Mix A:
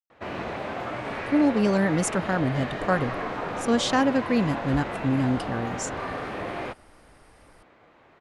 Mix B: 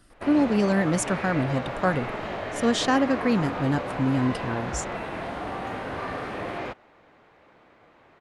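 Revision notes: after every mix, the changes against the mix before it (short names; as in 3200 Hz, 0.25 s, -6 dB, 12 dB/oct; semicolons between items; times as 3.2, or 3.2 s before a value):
speech: entry -1.05 s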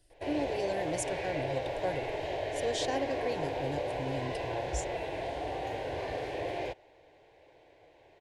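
speech -7.0 dB; master: add fixed phaser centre 520 Hz, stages 4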